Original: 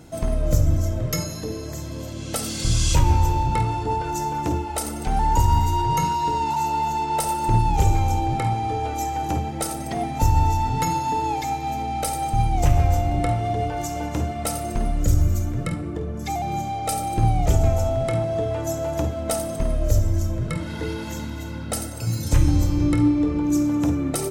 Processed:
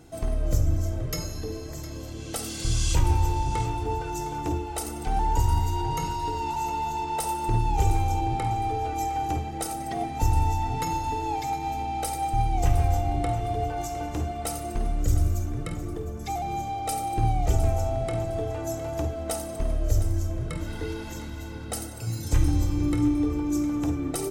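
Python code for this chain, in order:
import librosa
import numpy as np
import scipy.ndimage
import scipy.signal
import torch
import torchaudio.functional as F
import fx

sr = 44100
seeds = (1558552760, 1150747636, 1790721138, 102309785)

p1 = x + 0.35 * np.pad(x, (int(2.6 * sr / 1000.0), 0))[:len(x)]
p2 = p1 + fx.echo_feedback(p1, sr, ms=709, feedback_pct=30, wet_db=-14.0, dry=0)
y = p2 * librosa.db_to_amplitude(-5.5)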